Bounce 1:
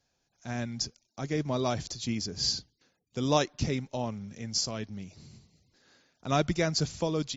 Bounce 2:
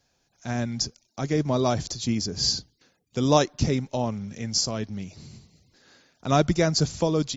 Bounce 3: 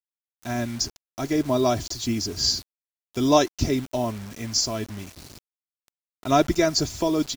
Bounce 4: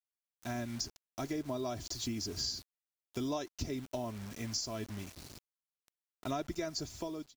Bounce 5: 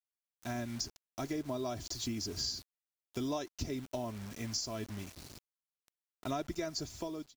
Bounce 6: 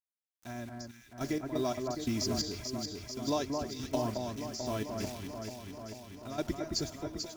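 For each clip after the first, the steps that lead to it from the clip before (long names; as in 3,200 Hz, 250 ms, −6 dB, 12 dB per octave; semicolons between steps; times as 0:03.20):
dynamic equaliser 2,500 Hz, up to −5 dB, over −45 dBFS, Q 0.91; level +6.5 dB
comb filter 3 ms, depth 64%; mains hum 50 Hz, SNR 33 dB; bit reduction 7 bits
fade-out on the ending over 0.73 s; downward compressor 5 to 1, threshold −28 dBFS, peak gain reduction 14.5 dB; level −6.5 dB
floating-point word with a short mantissa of 4 bits
fade in at the beginning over 1.48 s; gate pattern "..xx...x.x" 87 BPM −12 dB; on a send: delay that swaps between a low-pass and a high-pass 220 ms, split 1,800 Hz, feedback 83%, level −4 dB; on the sum: level +5 dB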